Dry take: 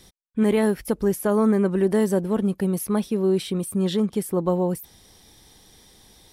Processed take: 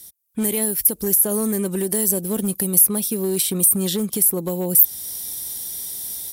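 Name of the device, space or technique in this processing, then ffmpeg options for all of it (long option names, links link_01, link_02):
FM broadcast chain: -filter_complex "[0:a]highpass=52,dynaudnorm=framelen=170:gausssize=3:maxgain=12dB,acrossover=split=760|2100[link_01][link_02][link_03];[link_01]acompressor=threshold=-12dB:ratio=4[link_04];[link_02]acompressor=threshold=-38dB:ratio=4[link_05];[link_03]acompressor=threshold=-27dB:ratio=4[link_06];[link_04][link_05][link_06]amix=inputs=3:normalize=0,aemphasis=mode=production:type=50fm,alimiter=limit=-7.5dB:level=0:latency=1:release=227,asoftclip=type=hard:threshold=-10dB,lowpass=frequency=15000:width=0.5412,lowpass=frequency=15000:width=1.3066,aemphasis=mode=production:type=50fm,volume=-7dB"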